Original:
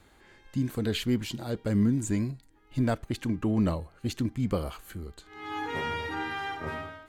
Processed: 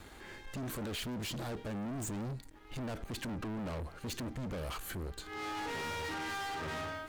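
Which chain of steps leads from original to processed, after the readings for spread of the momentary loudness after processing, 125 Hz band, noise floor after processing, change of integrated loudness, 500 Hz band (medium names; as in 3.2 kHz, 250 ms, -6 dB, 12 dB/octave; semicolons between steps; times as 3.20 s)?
5 LU, -10.5 dB, -53 dBFS, -9.0 dB, -8.0 dB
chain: peak limiter -27.5 dBFS, peak gain reduction 11.5 dB; waveshaping leveller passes 3; saturation -33 dBFS, distortion -16 dB; trim -3.5 dB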